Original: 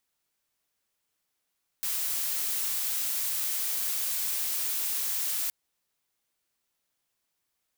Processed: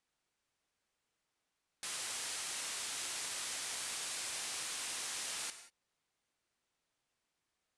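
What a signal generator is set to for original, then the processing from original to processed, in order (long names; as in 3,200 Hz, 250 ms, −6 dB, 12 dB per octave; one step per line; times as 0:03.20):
noise blue, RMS −30 dBFS 3.67 s
Butterworth low-pass 10,000 Hz 36 dB per octave
high-shelf EQ 4,000 Hz −7.5 dB
reverb whose tail is shaped and stops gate 210 ms flat, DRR 9.5 dB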